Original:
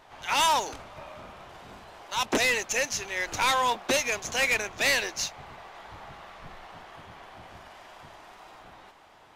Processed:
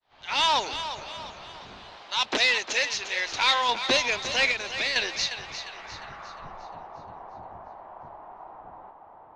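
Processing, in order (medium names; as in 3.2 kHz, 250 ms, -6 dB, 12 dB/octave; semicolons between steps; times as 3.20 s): fade-in on the opening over 0.56 s; 1.96–3.69 s: bass shelf 340 Hz -10 dB; 4.51–4.96 s: compression 6:1, threshold -30 dBFS, peak gain reduction 8.5 dB; low-pass sweep 4.2 kHz -> 900 Hz, 5.35–6.61 s; thinning echo 353 ms, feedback 46%, level -10 dB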